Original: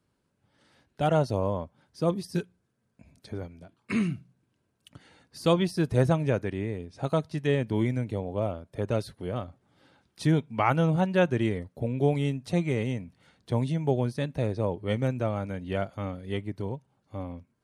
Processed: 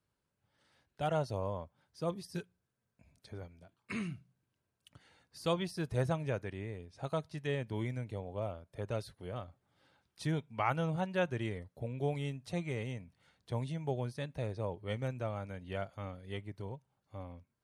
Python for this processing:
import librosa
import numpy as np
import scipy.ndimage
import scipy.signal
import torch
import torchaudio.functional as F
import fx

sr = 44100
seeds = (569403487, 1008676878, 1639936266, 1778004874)

y = fx.peak_eq(x, sr, hz=260.0, db=-6.5, octaves=1.5)
y = y * librosa.db_to_amplitude(-7.0)